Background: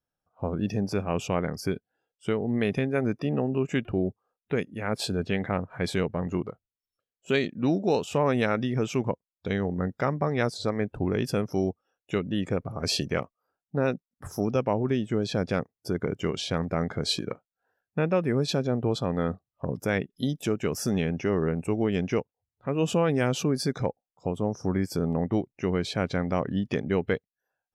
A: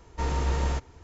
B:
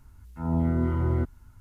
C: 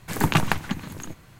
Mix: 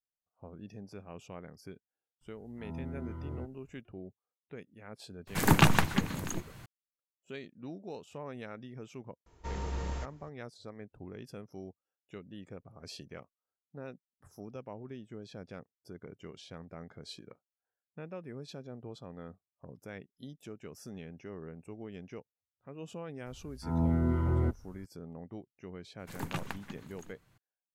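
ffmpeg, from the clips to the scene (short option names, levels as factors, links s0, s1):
-filter_complex "[2:a]asplit=2[s0][s1];[3:a]asplit=2[s2][s3];[0:a]volume=0.112[s4];[s2]acontrast=64[s5];[s0]atrim=end=1.6,asetpts=PTS-STARTPTS,volume=0.158,afade=t=in:d=0.004:c=hsin,afade=t=out:st=1.596:d=0.004:c=hsin,adelay=2210[s6];[s5]atrim=end=1.39,asetpts=PTS-STARTPTS,volume=0.473,afade=t=in:d=0.004:c=hsin,afade=t=out:st=1.386:d=0.004:c=hsin,adelay=5270[s7];[1:a]atrim=end=1.03,asetpts=PTS-STARTPTS,volume=0.316,afade=t=in:d=0.004:c=hsin,afade=t=out:st=1.026:d=0.004:c=hsin,adelay=9260[s8];[s1]atrim=end=1.6,asetpts=PTS-STARTPTS,volume=0.668,afade=t=in:d=0.004:c=hsin,afade=t=out:st=1.596:d=0.004:c=hsin,adelay=23260[s9];[s3]atrim=end=1.39,asetpts=PTS-STARTPTS,volume=0.141,afade=t=in:d=0.004:c=hsin,afade=t=out:st=1.386:d=0.004:c=hsin,adelay=25990[s10];[s4][s6][s7][s8][s9][s10]amix=inputs=6:normalize=0"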